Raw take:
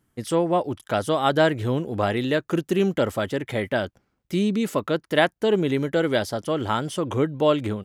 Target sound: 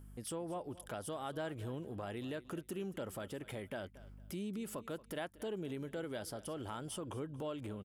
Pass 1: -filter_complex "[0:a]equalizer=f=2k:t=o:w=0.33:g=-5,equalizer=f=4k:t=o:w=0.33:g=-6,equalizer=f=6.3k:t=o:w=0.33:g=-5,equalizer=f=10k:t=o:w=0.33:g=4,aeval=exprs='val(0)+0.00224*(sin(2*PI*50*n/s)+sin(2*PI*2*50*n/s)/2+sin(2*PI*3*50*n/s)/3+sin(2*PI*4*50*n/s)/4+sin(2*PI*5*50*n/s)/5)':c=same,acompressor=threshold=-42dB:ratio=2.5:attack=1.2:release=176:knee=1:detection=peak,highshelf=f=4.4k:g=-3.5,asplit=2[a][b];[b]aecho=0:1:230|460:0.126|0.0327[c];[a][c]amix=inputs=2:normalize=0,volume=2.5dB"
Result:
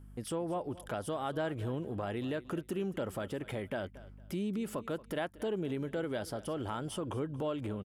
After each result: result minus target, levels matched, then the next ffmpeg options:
compressor: peak gain reduction -6.5 dB; 8000 Hz band -6.0 dB
-filter_complex "[0:a]equalizer=f=2k:t=o:w=0.33:g=-5,equalizer=f=4k:t=o:w=0.33:g=-6,equalizer=f=6.3k:t=o:w=0.33:g=-5,equalizer=f=10k:t=o:w=0.33:g=4,aeval=exprs='val(0)+0.00224*(sin(2*PI*50*n/s)+sin(2*PI*2*50*n/s)/2+sin(2*PI*3*50*n/s)/3+sin(2*PI*4*50*n/s)/4+sin(2*PI*5*50*n/s)/5)':c=same,acompressor=threshold=-52.5dB:ratio=2.5:attack=1.2:release=176:knee=1:detection=peak,highshelf=f=4.4k:g=-3.5,asplit=2[a][b];[b]aecho=0:1:230|460:0.126|0.0327[c];[a][c]amix=inputs=2:normalize=0,volume=2.5dB"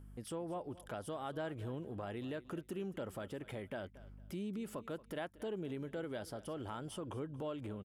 8000 Hz band -6.0 dB
-filter_complex "[0:a]equalizer=f=2k:t=o:w=0.33:g=-5,equalizer=f=4k:t=o:w=0.33:g=-6,equalizer=f=6.3k:t=o:w=0.33:g=-5,equalizer=f=10k:t=o:w=0.33:g=4,aeval=exprs='val(0)+0.00224*(sin(2*PI*50*n/s)+sin(2*PI*2*50*n/s)/2+sin(2*PI*3*50*n/s)/3+sin(2*PI*4*50*n/s)/4+sin(2*PI*5*50*n/s)/5)':c=same,acompressor=threshold=-52.5dB:ratio=2.5:attack=1.2:release=176:knee=1:detection=peak,highshelf=f=4.4k:g=4.5,asplit=2[a][b];[b]aecho=0:1:230|460:0.126|0.0327[c];[a][c]amix=inputs=2:normalize=0,volume=2.5dB"

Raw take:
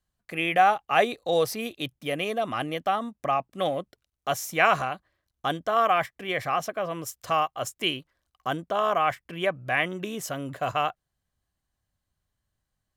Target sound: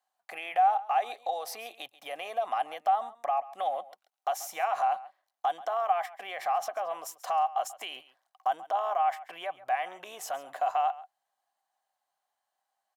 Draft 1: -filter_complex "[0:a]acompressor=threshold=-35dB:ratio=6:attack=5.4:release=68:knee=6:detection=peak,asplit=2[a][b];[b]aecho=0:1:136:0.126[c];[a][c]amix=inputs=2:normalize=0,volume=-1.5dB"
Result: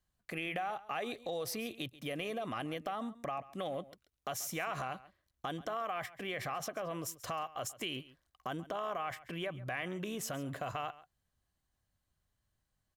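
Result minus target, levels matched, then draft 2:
1000 Hz band -5.0 dB
-filter_complex "[0:a]acompressor=threshold=-35dB:ratio=6:attack=5.4:release=68:knee=6:detection=peak,highpass=f=770:t=q:w=7.2,asplit=2[a][b];[b]aecho=0:1:136:0.126[c];[a][c]amix=inputs=2:normalize=0,volume=-1.5dB"

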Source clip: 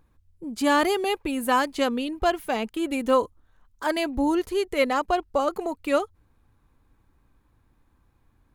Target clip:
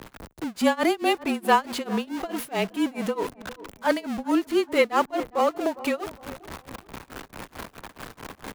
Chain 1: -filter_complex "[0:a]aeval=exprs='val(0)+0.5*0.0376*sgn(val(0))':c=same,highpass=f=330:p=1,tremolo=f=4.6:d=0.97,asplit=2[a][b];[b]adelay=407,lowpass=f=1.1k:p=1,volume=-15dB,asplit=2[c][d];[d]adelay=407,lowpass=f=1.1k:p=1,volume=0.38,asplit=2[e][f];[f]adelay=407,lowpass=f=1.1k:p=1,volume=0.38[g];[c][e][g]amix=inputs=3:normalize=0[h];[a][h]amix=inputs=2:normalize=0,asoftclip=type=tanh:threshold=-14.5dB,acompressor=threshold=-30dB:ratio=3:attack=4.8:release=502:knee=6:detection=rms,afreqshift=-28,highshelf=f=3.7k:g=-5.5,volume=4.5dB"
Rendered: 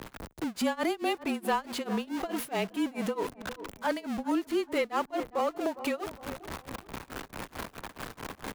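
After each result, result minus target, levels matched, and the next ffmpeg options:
soft clip: distortion +17 dB; compressor: peak gain reduction +9 dB
-filter_complex "[0:a]aeval=exprs='val(0)+0.5*0.0376*sgn(val(0))':c=same,highpass=f=330:p=1,tremolo=f=4.6:d=0.97,asplit=2[a][b];[b]adelay=407,lowpass=f=1.1k:p=1,volume=-15dB,asplit=2[c][d];[d]adelay=407,lowpass=f=1.1k:p=1,volume=0.38,asplit=2[e][f];[f]adelay=407,lowpass=f=1.1k:p=1,volume=0.38[g];[c][e][g]amix=inputs=3:normalize=0[h];[a][h]amix=inputs=2:normalize=0,asoftclip=type=tanh:threshold=-5dB,acompressor=threshold=-30dB:ratio=3:attack=4.8:release=502:knee=6:detection=rms,afreqshift=-28,highshelf=f=3.7k:g=-5.5,volume=4.5dB"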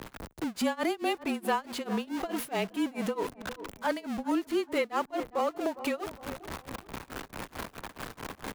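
compressor: peak gain reduction +10.5 dB
-filter_complex "[0:a]aeval=exprs='val(0)+0.5*0.0376*sgn(val(0))':c=same,highpass=f=330:p=1,tremolo=f=4.6:d=0.97,asplit=2[a][b];[b]adelay=407,lowpass=f=1.1k:p=1,volume=-15dB,asplit=2[c][d];[d]adelay=407,lowpass=f=1.1k:p=1,volume=0.38,asplit=2[e][f];[f]adelay=407,lowpass=f=1.1k:p=1,volume=0.38[g];[c][e][g]amix=inputs=3:normalize=0[h];[a][h]amix=inputs=2:normalize=0,asoftclip=type=tanh:threshold=-5dB,afreqshift=-28,highshelf=f=3.7k:g=-5.5,volume=4.5dB"

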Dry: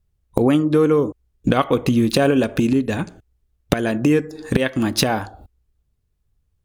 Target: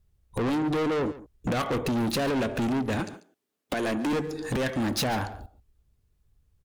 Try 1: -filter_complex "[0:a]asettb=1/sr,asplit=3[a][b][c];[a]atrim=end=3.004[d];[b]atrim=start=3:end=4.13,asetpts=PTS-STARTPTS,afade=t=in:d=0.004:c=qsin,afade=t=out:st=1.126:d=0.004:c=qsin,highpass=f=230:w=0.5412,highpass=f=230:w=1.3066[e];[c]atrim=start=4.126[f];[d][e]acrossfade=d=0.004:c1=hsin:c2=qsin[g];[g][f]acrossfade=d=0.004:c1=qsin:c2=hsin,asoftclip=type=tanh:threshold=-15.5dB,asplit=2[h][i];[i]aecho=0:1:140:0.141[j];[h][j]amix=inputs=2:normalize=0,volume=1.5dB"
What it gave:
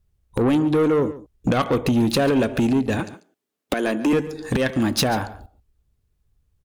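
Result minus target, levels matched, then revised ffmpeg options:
soft clip: distortion -7 dB
-filter_complex "[0:a]asettb=1/sr,asplit=3[a][b][c];[a]atrim=end=3.004[d];[b]atrim=start=3:end=4.13,asetpts=PTS-STARTPTS,afade=t=in:d=0.004:c=qsin,afade=t=out:st=1.126:d=0.004:c=qsin,highpass=f=230:w=0.5412,highpass=f=230:w=1.3066[e];[c]atrim=start=4.126[f];[d][e]acrossfade=d=0.004:c1=hsin:c2=qsin[g];[g][f]acrossfade=d=0.004:c1=qsin:c2=hsin,asoftclip=type=tanh:threshold=-26dB,asplit=2[h][i];[i]aecho=0:1:140:0.141[j];[h][j]amix=inputs=2:normalize=0,volume=1.5dB"

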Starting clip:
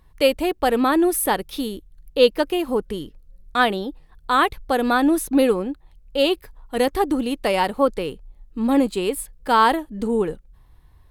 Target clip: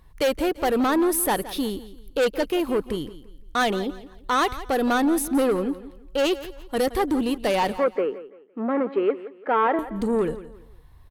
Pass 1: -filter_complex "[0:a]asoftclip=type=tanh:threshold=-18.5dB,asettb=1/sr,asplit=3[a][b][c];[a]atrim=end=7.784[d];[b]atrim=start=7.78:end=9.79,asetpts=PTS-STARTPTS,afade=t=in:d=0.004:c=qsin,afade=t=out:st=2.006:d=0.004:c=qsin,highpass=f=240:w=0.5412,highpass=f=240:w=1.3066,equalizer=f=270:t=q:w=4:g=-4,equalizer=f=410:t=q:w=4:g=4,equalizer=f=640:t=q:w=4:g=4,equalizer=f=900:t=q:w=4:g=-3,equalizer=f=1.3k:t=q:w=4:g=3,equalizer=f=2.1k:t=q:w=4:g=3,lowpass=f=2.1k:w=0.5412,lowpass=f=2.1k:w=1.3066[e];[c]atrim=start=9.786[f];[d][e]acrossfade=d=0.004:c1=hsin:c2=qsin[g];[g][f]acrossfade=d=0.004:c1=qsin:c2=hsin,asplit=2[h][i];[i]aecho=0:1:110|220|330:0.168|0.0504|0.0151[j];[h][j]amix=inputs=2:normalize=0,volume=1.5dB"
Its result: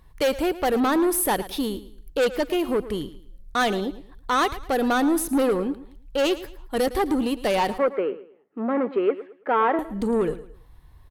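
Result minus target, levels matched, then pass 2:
echo 60 ms early
-filter_complex "[0:a]asoftclip=type=tanh:threshold=-18.5dB,asettb=1/sr,asplit=3[a][b][c];[a]atrim=end=7.784[d];[b]atrim=start=7.78:end=9.79,asetpts=PTS-STARTPTS,afade=t=in:d=0.004:c=qsin,afade=t=out:st=2.006:d=0.004:c=qsin,highpass=f=240:w=0.5412,highpass=f=240:w=1.3066,equalizer=f=270:t=q:w=4:g=-4,equalizer=f=410:t=q:w=4:g=4,equalizer=f=640:t=q:w=4:g=4,equalizer=f=900:t=q:w=4:g=-3,equalizer=f=1.3k:t=q:w=4:g=3,equalizer=f=2.1k:t=q:w=4:g=3,lowpass=f=2.1k:w=0.5412,lowpass=f=2.1k:w=1.3066[e];[c]atrim=start=9.786[f];[d][e]acrossfade=d=0.004:c1=hsin:c2=qsin[g];[g][f]acrossfade=d=0.004:c1=qsin:c2=hsin,asplit=2[h][i];[i]aecho=0:1:170|340|510:0.168|0.0504|0.0151[j];[h][j]amix=inputs=2:normalize=0,volume=1.5dB"

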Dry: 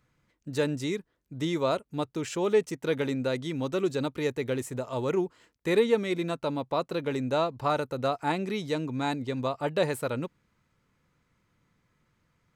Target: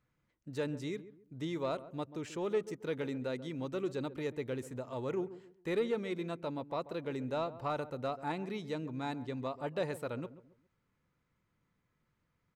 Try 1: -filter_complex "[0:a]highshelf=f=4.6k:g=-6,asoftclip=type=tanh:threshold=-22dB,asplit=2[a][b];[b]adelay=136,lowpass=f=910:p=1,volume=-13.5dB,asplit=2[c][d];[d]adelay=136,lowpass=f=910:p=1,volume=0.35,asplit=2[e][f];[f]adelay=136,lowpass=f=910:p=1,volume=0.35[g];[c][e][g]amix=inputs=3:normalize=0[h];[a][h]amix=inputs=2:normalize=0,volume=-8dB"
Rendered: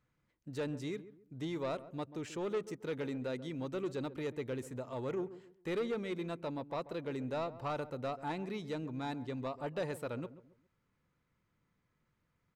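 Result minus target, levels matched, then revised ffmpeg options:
soft clip: distortion +10 dB
-filter_complex "[0:a]highshelf=f=4.6k:g=-6,asoftclip=type=tanh:threshold=-14.5dB,asplit=2[a][b];[b]adelay=136,lowpass=f=910:p=1,volume=-13.5dB,asplit=2[c][d];[d]adelay=136,lowpass=f=910:p=1,volume=0.35,asplit=2[e][f];[f]adelay=136,lowpass=f=910:p=1,volume=0.35[g];[c][e][g]amix=inputs=3:normalize=0[h];[a][h]amix=inputs=2:normalize=0,volume=-8dB"

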